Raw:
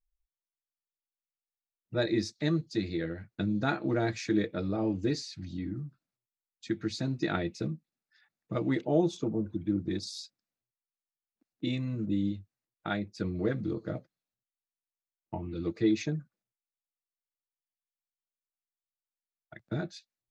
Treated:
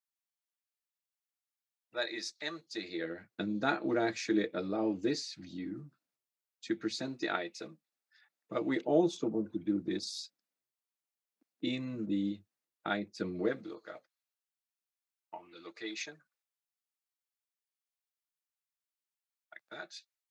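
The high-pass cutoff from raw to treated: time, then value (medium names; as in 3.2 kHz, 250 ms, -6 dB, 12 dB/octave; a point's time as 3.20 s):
2.55 s 800 Hz
3.27 s 270 Hz
6.91 s 270 Hz
7.55 s 630 Hz
9.04 s 240 Hz
13.41 s 240 Hz
13.82 s 910 Hz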